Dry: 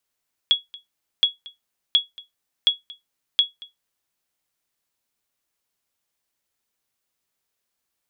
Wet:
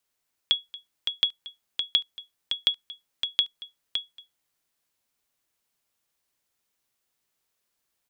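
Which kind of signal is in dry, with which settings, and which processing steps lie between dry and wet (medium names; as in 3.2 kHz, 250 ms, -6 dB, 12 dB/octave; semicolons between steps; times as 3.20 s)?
sonar ping 3.35 kHz, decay 0.16 s, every 0.72 s, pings 5, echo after 0.23 s, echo -22.5 dB -8 dBFS
compression, threshold -19 dBFS; delay 563 ms -6.5 dB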